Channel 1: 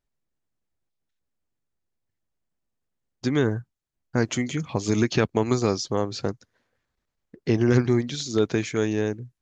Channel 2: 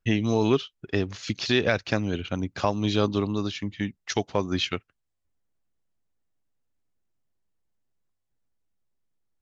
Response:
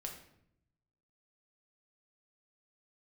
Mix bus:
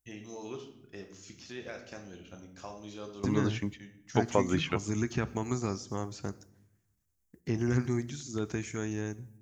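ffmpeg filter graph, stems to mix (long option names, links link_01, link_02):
-filter_complex "[0:a]equalizer=frequency=490:width=1.8:gain=-7.5,volume=-10dB,asplit=3[link_01][link_02][link_03];[link_02]volume=-7.5dB[link_04];[1:a]lowshelf=frequency=120:gain=-10,volume=-1dB,asplit=2[link_05][link_06];[link_06]volume=-16dB[link_07];[link_03]apad=whole_len=414998[link_08];[link_05][link_08]sidechaingate=range=-33dB:threshold=-60dB:ratio=16:detection=peak[link_09];[2:a]atrim=start_sample=2205[link_10];[link_04][link_07]amix=inputs=2:normalize=0[link_11];[link_11][link_10]afir=irnorm=-1:irlink=0[link_12];[link_01][link_09][link_12]amix=inputs=3:normalize=0,acrossover=split=2700[link_13][link_14];[link_14]acompressor=threshold=-53dB:ratio=4:attack=1:release=60[link_15];[link_13][link_15]amix=inputs=2:normalize=0,equalizer=frequency=66:width_type=o:width=0.45:gain=14.5,aexciter=amount=6.6:drive=2.8:freq=5800"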